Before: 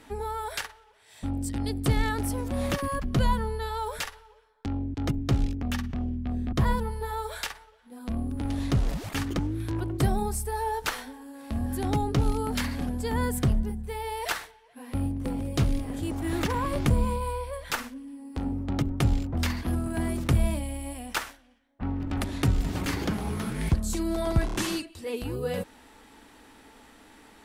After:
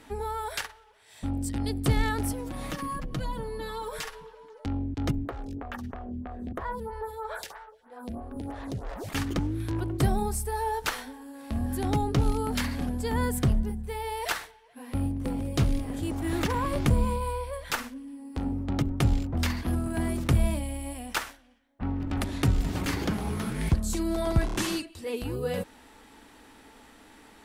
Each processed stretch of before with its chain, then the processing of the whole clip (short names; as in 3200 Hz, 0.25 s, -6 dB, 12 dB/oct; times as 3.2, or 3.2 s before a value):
2.32–4.66 comb 6.4 ms, depth 71% + compressor 2.5:1, threshold -33 dBFS + delay with a stepping band-pass 0.223 s, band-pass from 180 Hz, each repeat 0.7 oct, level -5.5 dB
5.25–9.09 band shelf 840 Hz +8 dB 2.5 oct + compressor 4:1, threshold -29 dBFS + photocell phaser 3.1 Hz
whole clip: dry